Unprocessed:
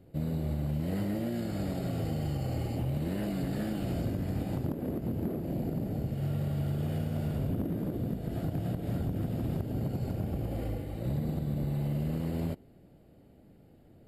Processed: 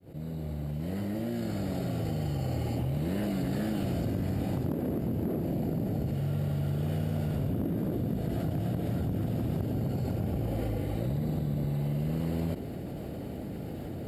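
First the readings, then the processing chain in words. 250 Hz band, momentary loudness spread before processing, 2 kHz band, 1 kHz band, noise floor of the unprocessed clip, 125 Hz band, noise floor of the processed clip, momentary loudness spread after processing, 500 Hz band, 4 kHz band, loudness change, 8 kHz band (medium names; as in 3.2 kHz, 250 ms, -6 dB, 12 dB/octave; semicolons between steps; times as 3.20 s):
+2.0 dB, 2 LU, +2.0 dB, +2.5 dB, -58 dBFS, +1.5 dB, -38 dBFS, 6 LU, +2.5 dB, +2.0 dB, +1.5 dB, no reading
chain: fade-in on the opening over 3.09 s; high-pass 54 Hz; level flattener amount 70%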